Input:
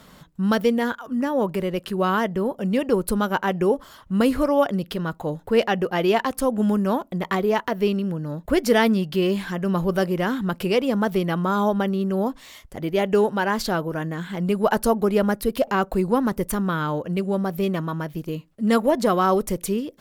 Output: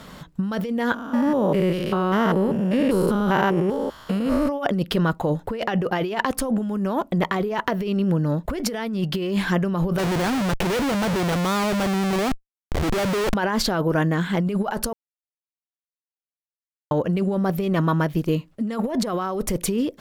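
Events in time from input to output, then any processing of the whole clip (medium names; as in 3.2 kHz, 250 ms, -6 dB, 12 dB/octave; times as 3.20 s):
0.94–4.52 s: spectrogram pixelated in time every 200 ms
9.98–13.34 s: Schmitt trigger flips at -32 dBFS
14.93–16.91 s: mute
whole clip: treble shelf 7.9 kHz -6.5 dB; compressor with a negative ratio -26 dBFS, ratio -1; trim +4 dB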